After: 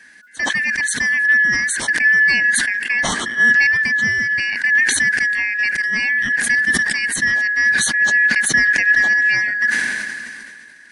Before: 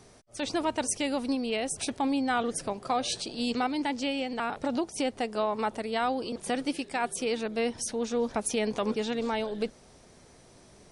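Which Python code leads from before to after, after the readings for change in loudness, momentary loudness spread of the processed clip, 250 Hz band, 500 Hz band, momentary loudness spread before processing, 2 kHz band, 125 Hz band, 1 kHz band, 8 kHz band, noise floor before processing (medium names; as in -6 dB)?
+15.5 dB, 6 LU, -3.0 dB, -9.0 dB, 3 LU, +27.5 dB, +9.5 dB, -3.0 dB, +13.5 dB, -56 dBFS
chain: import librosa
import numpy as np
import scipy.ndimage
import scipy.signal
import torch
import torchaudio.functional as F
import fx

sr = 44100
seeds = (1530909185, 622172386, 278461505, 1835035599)

y = fx.band_shuffle(x, sr, order='3142')
y = fx.small_body(y, sr, hz=(230.0, 1700.0), ring_ms=40, db=15)
y = fx.sustainer(y, sr, db_per_s=27.0)
y = y * 10.0 ** (3.5 / 20.0)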